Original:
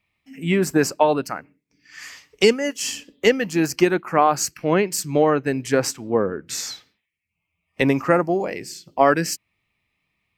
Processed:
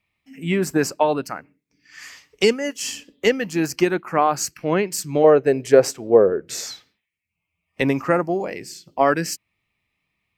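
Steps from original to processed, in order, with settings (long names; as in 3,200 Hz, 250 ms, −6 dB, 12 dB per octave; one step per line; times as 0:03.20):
0:05.24–0:06.67: flat-topped bell 510 Hz +9.5 dB 1.2 octaves
level −1.5 dB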